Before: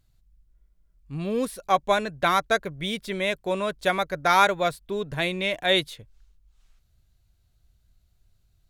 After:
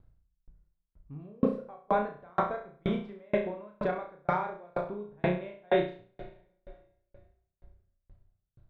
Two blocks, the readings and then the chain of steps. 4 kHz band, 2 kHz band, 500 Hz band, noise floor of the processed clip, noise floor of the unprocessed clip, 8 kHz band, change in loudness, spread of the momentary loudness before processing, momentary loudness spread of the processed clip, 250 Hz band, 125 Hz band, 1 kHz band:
−21.5 dB, −14.0 dB, −5.0 dB, −83 dBFS, −65 dBFS, below −35 dB, −8.0 dB, 10 LU, 18 LU, −2.5 dB, −3.0 dB, −9.0 dB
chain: low-pass filter 1,100 Hz 12 dB per octave
in parallel at +3 dB: downward compressor, threshold −35 dBFS, peak gain reduction 17.5 dB
on the sum: brickwall limiter −16.5 dBFS, peak gain reduction 8.5 dB
on a send: flutter between parallel walls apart 5.8 metres, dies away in 0.89 s
on the sum: dense smooth reverb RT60 3.3 s, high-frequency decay 0.8×, DRR 13.5 dB
tremolo with a ramp in dB decaying 2.1 Hz, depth 38 dB

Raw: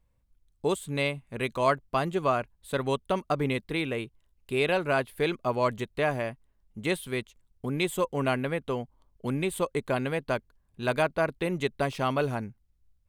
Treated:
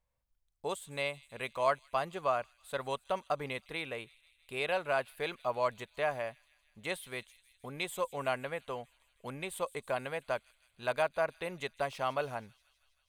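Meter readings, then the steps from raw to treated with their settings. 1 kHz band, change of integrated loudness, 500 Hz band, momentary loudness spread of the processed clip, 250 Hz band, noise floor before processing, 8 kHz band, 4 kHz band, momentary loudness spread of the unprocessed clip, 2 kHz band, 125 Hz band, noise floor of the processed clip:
−4.5 dB, −6.5 dB, −6.5 dB, 11 LU, −15.5 dB, −70 dBFS, −6.0 dB, −6.0 dB, 8 LU, −5.5 dB, −14.5 dB, −76 dBFS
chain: low shelf with overshoot 450 Hz −8 dB, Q 1.5
on a send: delay with a high-pass on its return 160 ms, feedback 69%, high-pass 3,900 Hz, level −15.5 dB
on the sum: level −6 dB

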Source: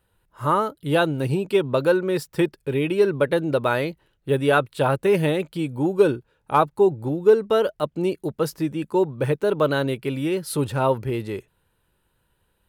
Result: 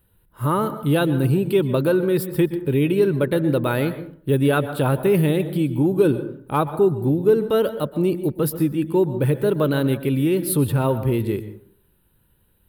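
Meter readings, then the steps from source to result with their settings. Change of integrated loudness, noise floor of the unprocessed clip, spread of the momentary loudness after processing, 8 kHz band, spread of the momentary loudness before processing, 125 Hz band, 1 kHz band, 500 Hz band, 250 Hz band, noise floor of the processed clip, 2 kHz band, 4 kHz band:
+2.0 dB, −70 dBFS, 5 LU, can't be measured, 7 LU, +6.0 dB, −3.0 dB, +0.5 dB, +5.0 dB, −62 dBFS, −2.5 dB, −1.0 dB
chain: drawn EQ curve 270 Hz 0 dB, 670 Hz −9 dB, 3,800 Hz −7 dB, 6,300 Hz −16 dB, 12,000 Hz 0 dB
in parallel at +2 dB: brickwall limiter −20 dBFS, peak gain reduction 10.5 dB
on the sum: high-shelf EQ 8,600 Hz +7 dB
dense smooth reverb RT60 0.55 s, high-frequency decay 0.4×, pre-delay 110 ms, DRR 12 dB

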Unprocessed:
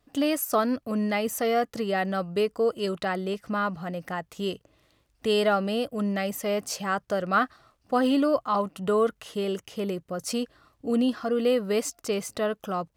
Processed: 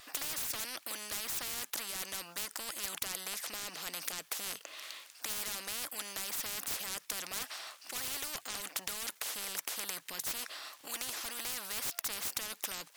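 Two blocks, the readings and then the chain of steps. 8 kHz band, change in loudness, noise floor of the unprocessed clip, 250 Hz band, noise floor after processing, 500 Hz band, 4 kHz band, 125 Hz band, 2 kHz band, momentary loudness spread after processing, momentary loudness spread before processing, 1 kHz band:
+2.5 dB, −10.0 dB, −70 dBFS, −28.0 dB, −60 dBFS, −26.0 dB, −2.5 dB, −22.0 dB, −8.5 dB, 4 LU, 8 LU, −17.5 dB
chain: Bessel high-pass filter 1,800 Hz, order 2
sine wavefolder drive 11 dB, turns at −17 dBFS
every bin compressed towards the loudest bin 10 to 1
level +3.5 dB

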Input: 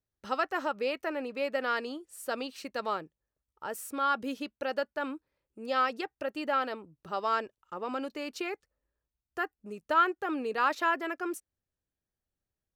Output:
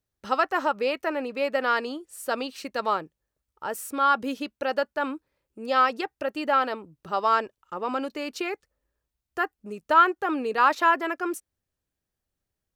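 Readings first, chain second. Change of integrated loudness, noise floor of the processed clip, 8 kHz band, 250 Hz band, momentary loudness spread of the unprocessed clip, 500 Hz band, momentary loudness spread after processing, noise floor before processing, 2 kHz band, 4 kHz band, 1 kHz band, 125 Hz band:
+6.5 dB, below −85 dBFS, +5.0 dB, +5.0 dB, 11 LU, +5.5 dB, 13 LU, below −85 dBFS, +6.0 dB, +5.0 dB, +7.5 dB, can't be measured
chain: dynamic equaliser 970 Hz, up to +4 dB, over −39 dBFS, Q 1.8
level +5 dB

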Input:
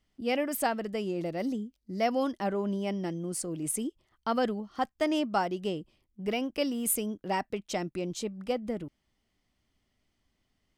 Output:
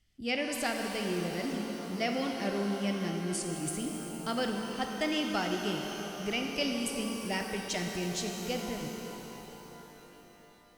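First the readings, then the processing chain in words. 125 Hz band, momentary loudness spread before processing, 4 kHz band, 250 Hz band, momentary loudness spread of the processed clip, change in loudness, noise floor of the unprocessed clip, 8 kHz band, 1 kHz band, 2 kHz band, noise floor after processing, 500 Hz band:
+1.0 dB, 9 LU, +5.0 dB, −1.0 dB, 10 LU, −1.5 dB, −78 dBFS, −2.0 dB, −4.0 dB, +3.5 dB, −56 dBFS, −3.0 dB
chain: octave-band graphic EQ 250/500/1,000 Hz −7/−7/−12 dB
on a send: feedback echo with a low-pass in the loop 340 ms, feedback 64%, level −16 dB
on the sum: treble cut that deepens with the level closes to 2,300 Hz, closed at −25.5 dBFS
reverb with rising layers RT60 3.8 s, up +12 semitones, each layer −8 dB, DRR 2.5 dB
level +4 dB

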